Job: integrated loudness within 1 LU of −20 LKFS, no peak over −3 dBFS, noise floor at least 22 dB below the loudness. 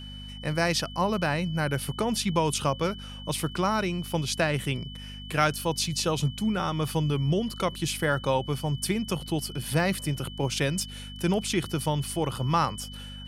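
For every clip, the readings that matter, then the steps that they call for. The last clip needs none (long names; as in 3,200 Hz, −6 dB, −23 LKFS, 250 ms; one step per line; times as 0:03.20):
mains hum 50 Hz; hum harmonics up to 250 Hz; level of the hum −40 dBFS; interfering tone 3,000 Hz; level of the tone −43 dBFS; integrated loudness −28.0 LKFS; sample peak −8.5 dBFS; target loudness −20.0 LKFS
→ hum removal 50 Hz, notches 5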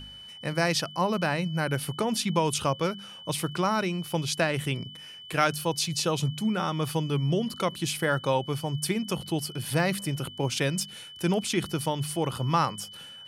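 mains hum none found; interfering tone 3,000 Hz; level of the tone −43 dBFS
→ notch filter 3,000 Hz, Q 30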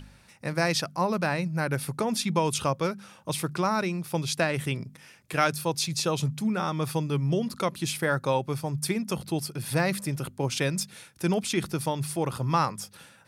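interfering tone none found; integrated loudness −28.5 LKFS; sample peak −9.0 dBFS; target loudness −20.0 LKFS
→ level +8.5 dB
brickwall limiter −3 dBFS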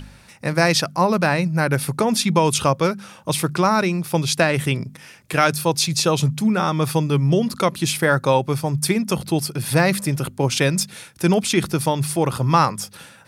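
integrated loudness −20.0 LKFS; sample peak −3.0 dBFS; background noise floor −47 dBFS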